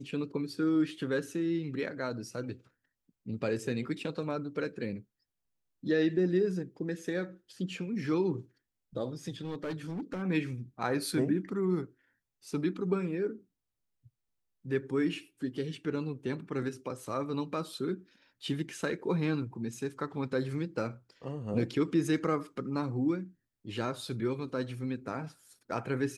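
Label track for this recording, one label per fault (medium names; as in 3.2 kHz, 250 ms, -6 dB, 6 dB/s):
9.410000	10.230000	clipped -32.5 dBFS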